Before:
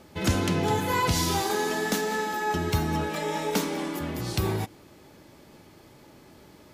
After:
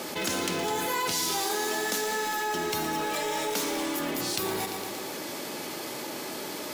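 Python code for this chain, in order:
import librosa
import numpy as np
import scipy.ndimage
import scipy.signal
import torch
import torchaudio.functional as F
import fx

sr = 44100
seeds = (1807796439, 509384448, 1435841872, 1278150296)

p1 = scipy.signal.sosfilt(scipy.signal.butter(2, 290.0, 'highpass', fs=sr, output='sos'), x)
p2 = fx.high_shelf(p1, sr, hz=3400.0, db=7.0)
p3 = (np.mod(10.0 ** (27.5 / 20.0) * p2 + 1.0, 2.0) - 1.0) / 10.0 ** (27.5 / 20.0)
p4 = p2 + F.gain(torch.from_numpy(p3), -10.0).numpy()
p5 = fx.echo_feedback(p4, sr, ms=115, feedback_pct=57, wet_db=-15.0)
p6 = fx.env_flatten(p5, sr, amount_pct=70)
y = F.gain(torch.from_numpy(p6), -6.0).numpy()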